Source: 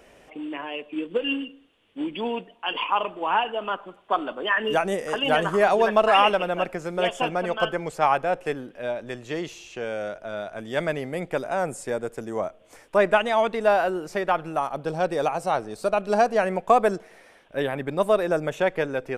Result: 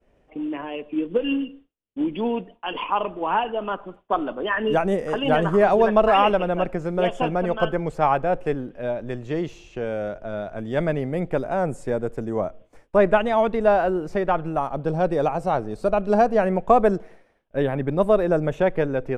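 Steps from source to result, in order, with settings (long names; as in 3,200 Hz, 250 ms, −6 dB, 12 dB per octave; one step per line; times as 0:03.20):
downward expander −43 dBFS
spectral tilt −3 dB per octave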